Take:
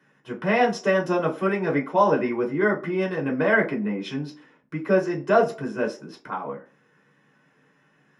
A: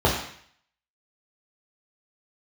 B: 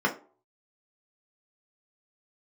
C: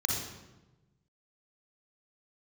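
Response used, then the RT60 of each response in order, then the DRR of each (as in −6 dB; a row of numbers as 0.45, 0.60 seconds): B; 0.60, 0.45, 1.1 seconds; −5.0, −1.0, −1.5 decibels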